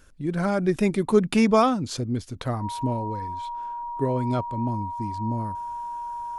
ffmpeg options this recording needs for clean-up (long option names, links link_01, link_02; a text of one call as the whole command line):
ffmpeg -i in.wav -af "bandreject=frequency=950:width=30" out.wav